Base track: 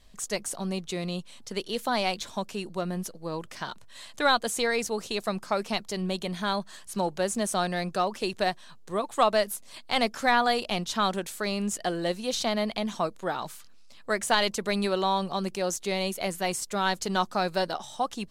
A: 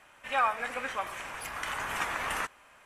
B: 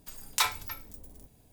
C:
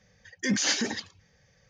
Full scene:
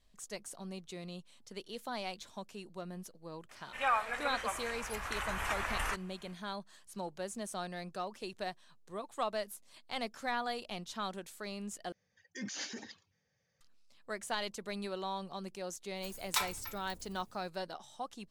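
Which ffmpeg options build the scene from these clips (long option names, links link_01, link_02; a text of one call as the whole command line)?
ffmpeg -i bed.wav -i cue0.wav -i cue1.wav -i cue2.wav -filter_complex "[0:a]volume=-13dB[link_01];[1:a]asubboost=boost=9.5:cutoff=84[link_02];[3:a]highpass=110[link_03];[link_01]asplit=2[link_04][link_05];[link_04]atrim=end=11.924[link_06];[link_03]atrim=end=1.69,asetpts=PTS-STARTPTS,volume=-15.5dB[link_07];[link_05]atrim=start=13.606[link_08];[link_02]atrim=end=2.85,asetpts=PTS-STARTPTS,volume=-3.5dB,afade=type=in:duration=0.004:curve=hsin,afade=type=out:start_time=2.846:duration=0.004:curve=hsin,adelay=153909S[link_09];[2:a]atrim=end=1.52,asetpts=PTS-STARTPTS,volume=-6dB,afade=type=in:duration=0.004:curve=hsin,afade=type=out:start_time=1.516:duration=0.004:curve=hsin,adelay=15960[link_10];[link_06][link_07]acrossfade=duration=0.004:curve1=hsin:curve2=hsin[link_11];[link_11][link_08]acrossfade=duration=0.004:curve1=hsin:curve2=hsin[link_12];[link_12][link_09][link_10]amix=inputs=3:normalize=0" out.wav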